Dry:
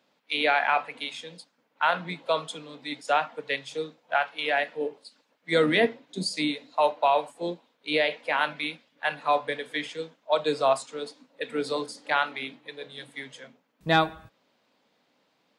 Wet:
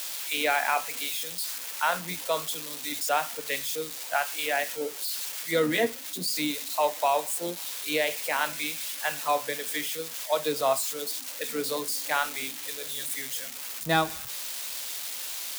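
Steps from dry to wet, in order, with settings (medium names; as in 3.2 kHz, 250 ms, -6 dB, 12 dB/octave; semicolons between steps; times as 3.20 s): zero-crossing glitches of -22 dBFS; 5.51–6.28 s: comb of notches 200 Hz; trim -2.5 dB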